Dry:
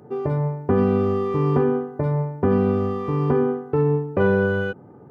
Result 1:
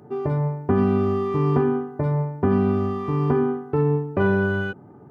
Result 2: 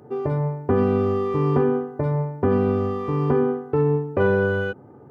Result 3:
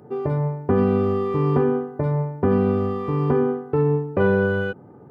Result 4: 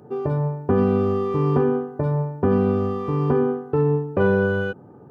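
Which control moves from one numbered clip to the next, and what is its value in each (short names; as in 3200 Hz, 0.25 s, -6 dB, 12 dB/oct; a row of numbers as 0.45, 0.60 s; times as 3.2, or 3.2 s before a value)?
notch, frequency: 500, 180, 6000, 2100 Hz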